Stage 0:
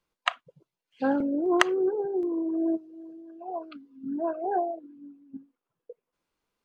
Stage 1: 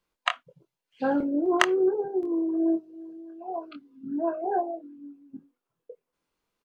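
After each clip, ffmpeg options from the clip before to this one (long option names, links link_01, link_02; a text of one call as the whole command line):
ffmpeg -i in.wav -filter_complex "[0:a]asplit=2[link_01][link_02];[link_02]adelay=24,volume=-6.5dB[link_03];[link_01][link_03]amix=inputs=2:normalize=0" out.wav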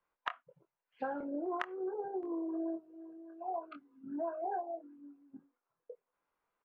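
ffmpeg -i in.wav -filter_complex "[0:a]acrossover=split=590 2000:gain=0.224 1 0.0794[link_01][link_02][link_03];[link_01][link_02][link_03]amix=inputs=3:normalize=0,acompressor=threshold=-36dB:ratio=10,volume=2dB" out.wav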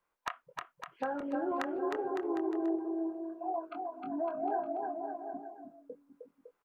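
ffmpeg -i in.wav -filter_complex "[0:a]volume=25.5dB,asoftclip=hard,volume=-25.5dB,asplit=2[link_01][link_02];[link_02]aecho=0:1:310|558|756.4|915.1|1042:0.631|0.398|0.251|0.158|0.1[link_03];[link_01][link_03]amix=inputs=2:normalize=0,volume=2.5dB" out.wav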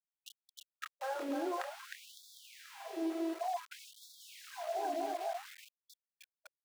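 ffmpeg -i in.wav -af "alimiter=level_in=9.5dB:limit=-24dB:level=0:latency=1:release=219,volume=-9.5dB,aeval=exprs='val(0)*gte(abs(val(0)),0.00398)':channel_layout=same,afftfilt=real='re*gte(b*sr/1024,250*pow(3400/250,0.5+0.5*sin(2*PI*0.55*pts/sr)))':imag='im*gte(b*sr/1024,250*pow(3400/250,0.5+0.5*sin(2*PI*0.55*pts/sr)))':win_size=1024:overlap=0.75,volume=5.5dB" out.wav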